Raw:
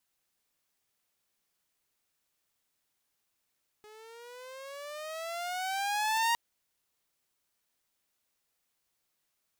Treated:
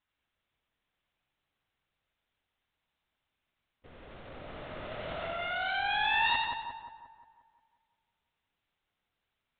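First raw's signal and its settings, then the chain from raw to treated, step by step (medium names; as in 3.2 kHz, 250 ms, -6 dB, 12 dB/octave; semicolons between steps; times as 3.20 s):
gliding synth tone saw, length 2.51 s, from 420 Hz, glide +14 st, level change +26 dB, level -22 dB
LPC vocoder at 8 kHz whisper; on a send: two-band feedback delay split 1.3 kHz, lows 177 ms, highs 92 ms, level -3 dB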